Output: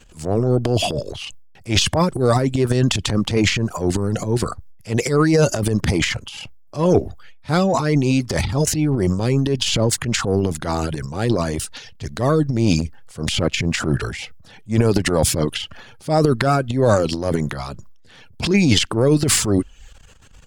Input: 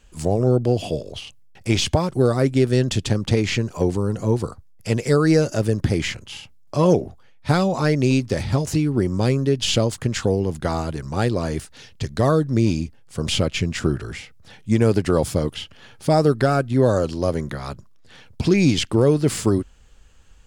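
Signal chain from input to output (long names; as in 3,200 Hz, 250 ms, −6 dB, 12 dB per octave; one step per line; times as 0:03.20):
reverb reduction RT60 0.53 s
transient designer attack −9 dB, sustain +11 dB
level +2 dB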